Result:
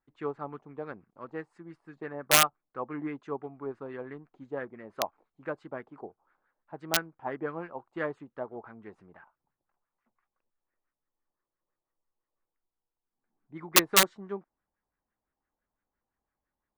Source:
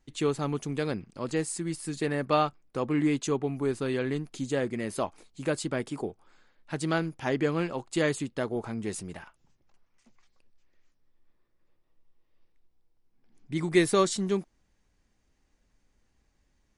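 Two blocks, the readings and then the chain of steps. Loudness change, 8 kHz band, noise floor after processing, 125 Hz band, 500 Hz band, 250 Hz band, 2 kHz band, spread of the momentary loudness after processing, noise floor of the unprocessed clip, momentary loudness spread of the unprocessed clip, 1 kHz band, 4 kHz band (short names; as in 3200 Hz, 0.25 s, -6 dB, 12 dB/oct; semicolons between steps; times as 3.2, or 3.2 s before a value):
+0.5 dB, +6.0 dB, under -85 dBFS, -12.5 dB, -7.0 dB, -10.5 dB, +2.0 dB, 24 LU, -72 dBFS, 10 LU, 0.0 dB, +7.0 dB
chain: high shelf 2500 Hz -6.5 dB; LFO low-pass sine 5.9 Hz 800–1600 Hz; wrapped overs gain 13.5 dB; tilt +2.5 dB/oct; upward expander 1.5:1, over -37 dBFS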